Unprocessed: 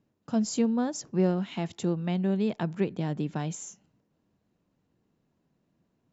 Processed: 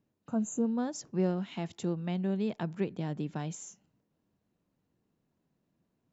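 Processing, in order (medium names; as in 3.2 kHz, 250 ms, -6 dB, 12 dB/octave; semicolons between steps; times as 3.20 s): spectral replace 0.30–0.63 s, 1.6–6 kHz after; trim -4.5 dB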